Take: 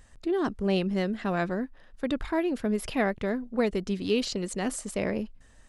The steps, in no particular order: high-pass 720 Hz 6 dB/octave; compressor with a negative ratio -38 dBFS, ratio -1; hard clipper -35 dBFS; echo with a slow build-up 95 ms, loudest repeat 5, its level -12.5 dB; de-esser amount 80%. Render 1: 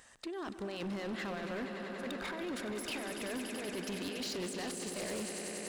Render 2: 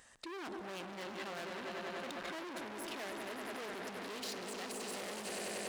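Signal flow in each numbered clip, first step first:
high-pass > compressor with a negative ratio > echo with a slow build-up > de-esser > hard clipper; echo with a slow build-up > de-esser > hard clipper > compressor with a negative ratio > high-pass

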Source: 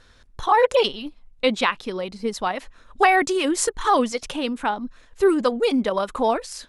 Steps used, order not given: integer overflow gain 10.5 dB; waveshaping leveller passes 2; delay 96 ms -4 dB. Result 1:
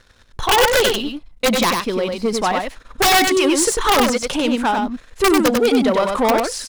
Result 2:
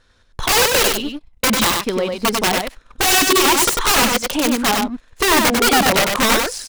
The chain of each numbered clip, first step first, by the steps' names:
integer overflow > waveshaping leveller > delay; waveshaping leveller > integer overflow > delay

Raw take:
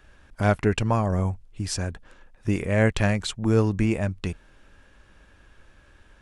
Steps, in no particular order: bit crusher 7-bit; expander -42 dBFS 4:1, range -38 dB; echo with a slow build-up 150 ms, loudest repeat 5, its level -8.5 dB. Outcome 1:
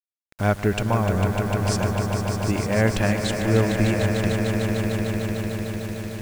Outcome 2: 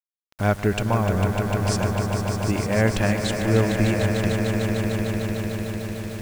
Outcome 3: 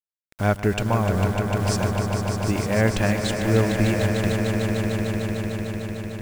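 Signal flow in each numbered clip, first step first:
expander > echo with a slow build-up > bit crusher; echo with a slow build-up > expander > bit crusher; expander > bit crusher > echo with a slow build-up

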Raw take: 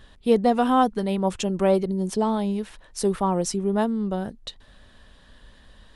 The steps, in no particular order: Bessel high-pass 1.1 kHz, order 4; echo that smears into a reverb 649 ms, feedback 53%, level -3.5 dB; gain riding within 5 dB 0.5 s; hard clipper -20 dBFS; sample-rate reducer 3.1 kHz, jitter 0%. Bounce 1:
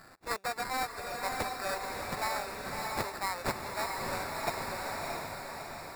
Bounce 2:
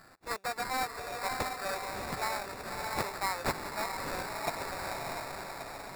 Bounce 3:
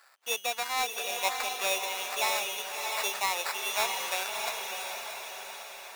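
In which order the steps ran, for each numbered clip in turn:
hard clipper > Bessel high-pass > sample-rate reducer > echo that smears into a reverb > gain riding; hard clipper > echo that smears into a reverb > gain riding > Bessel high-pass > sample-rate reducer; sample-rate reducer > Bessel high-pass > hard clipper > gain riding > echo that smears into a reverb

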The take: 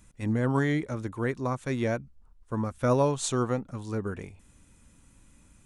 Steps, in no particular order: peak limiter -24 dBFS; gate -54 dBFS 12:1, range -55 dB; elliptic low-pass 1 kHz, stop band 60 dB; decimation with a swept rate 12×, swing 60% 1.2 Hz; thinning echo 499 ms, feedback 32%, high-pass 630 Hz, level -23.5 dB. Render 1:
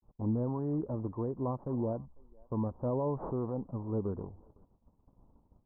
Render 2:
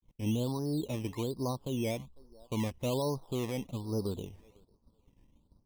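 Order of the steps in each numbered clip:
peak limiter > thinning echo > decimation with a swept rate > gate > elliptic low-pass; gate > thinning echo > peak limiter > elliptic low-pass > decimation with a swept rate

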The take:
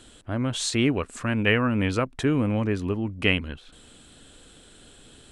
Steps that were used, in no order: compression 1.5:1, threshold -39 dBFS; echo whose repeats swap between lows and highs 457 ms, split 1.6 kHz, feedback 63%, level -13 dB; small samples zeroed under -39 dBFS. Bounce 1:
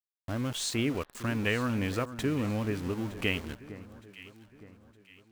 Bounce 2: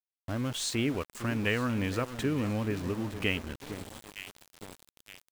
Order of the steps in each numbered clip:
compression > small samples zeroed > echo whose repeats swap between lows and highs; echo whose repeats swap between lows and highs > compression > small samples zeroed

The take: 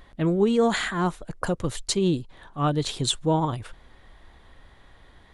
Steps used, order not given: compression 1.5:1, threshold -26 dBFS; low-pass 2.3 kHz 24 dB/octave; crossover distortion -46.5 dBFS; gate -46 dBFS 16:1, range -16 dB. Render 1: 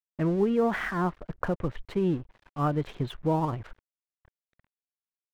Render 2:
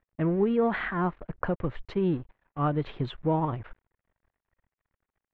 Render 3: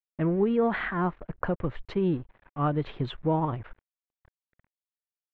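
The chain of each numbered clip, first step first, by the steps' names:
low-pass > gate > compression > crossover distortion; compression > crossover distortion > gate > low-pass; gate > crossover distortion > low-pass > compression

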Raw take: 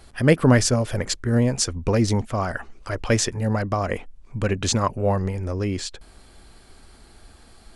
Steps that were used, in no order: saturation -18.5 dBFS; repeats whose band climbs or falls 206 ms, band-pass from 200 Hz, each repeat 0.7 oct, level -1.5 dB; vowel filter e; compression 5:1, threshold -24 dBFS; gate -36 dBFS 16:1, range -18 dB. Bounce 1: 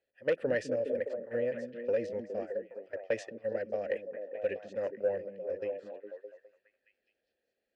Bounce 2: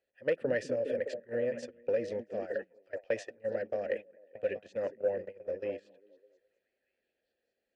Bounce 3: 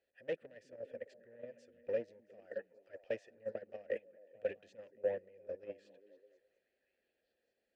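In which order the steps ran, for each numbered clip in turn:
vowel filter > saturation > gate > repeats whose band climbs or falls > compression; vowel filter > compression > repeats whose band climbs or falls > gate > saturation; saturation > repeats whose band climbs or falls > compression > vowel filter > gate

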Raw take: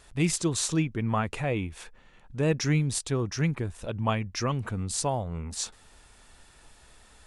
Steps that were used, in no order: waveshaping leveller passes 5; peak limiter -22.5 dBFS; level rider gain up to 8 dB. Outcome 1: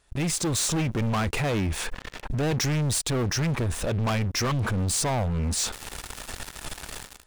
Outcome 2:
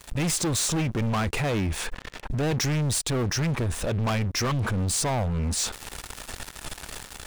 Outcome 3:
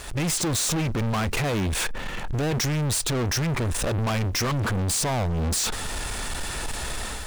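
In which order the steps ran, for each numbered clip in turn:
level rider > waveshaping leveller > peak limiter; waveshaping leveller > level rider > peak limiter; level rider > peak limiter > waveshaping leveller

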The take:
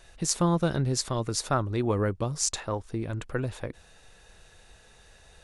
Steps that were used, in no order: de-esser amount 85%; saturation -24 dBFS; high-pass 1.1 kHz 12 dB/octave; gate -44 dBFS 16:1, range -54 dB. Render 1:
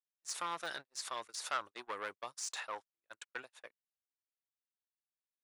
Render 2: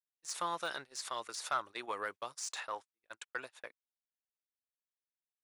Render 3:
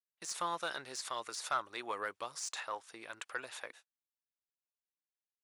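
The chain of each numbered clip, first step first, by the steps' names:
de-esser > saturation > high-pass > gate; de-esser > high-pass > gate > saturation; gate > high-pass > de-esser > saturation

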